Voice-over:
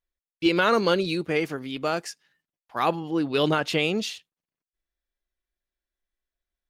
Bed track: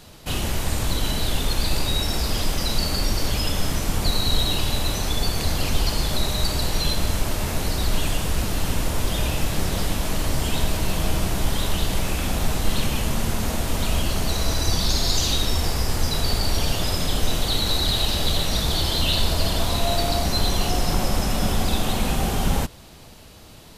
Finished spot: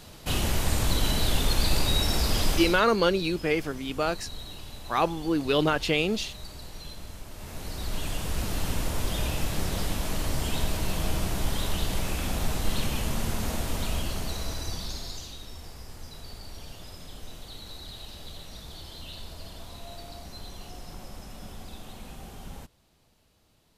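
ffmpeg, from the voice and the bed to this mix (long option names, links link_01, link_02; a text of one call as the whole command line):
ffmpeg -i stem1.wav -i stem2.wav -filter_complex "[0:a]adelay=2150,volume=-1dB[link_01];[1:a]volume=12dB,afade=type=out:start_time=2.55:duration=0.27:silence=0.133352,afade=type=in:start_time=7.3:duration=1.24:silence=0.211349,afade=type=out:start_time=13.57:duration=1.75:silence=0.177828[link_02];[link_01][link_02]amix=inputs=2:normalize=0" out.wav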